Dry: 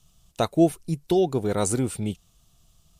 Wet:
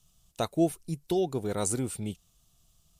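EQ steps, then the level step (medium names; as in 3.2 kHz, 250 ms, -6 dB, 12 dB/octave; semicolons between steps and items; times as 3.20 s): treble shelf 5.4 kHz +5.5 dB; -6.5 dB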